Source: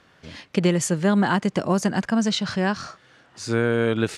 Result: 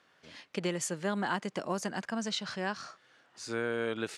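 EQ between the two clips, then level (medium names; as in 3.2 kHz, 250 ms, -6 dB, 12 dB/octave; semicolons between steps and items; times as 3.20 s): high-pass 410 Hz 6 dB/octave; -8.5 dB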